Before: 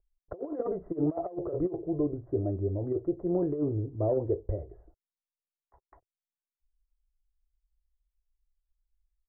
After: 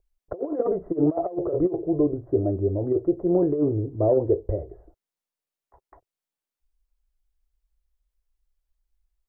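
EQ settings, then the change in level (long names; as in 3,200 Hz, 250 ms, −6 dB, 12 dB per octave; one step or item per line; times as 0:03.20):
parametric band 470 Hz +4.5 dB 2.3 octaves
+3.5 dB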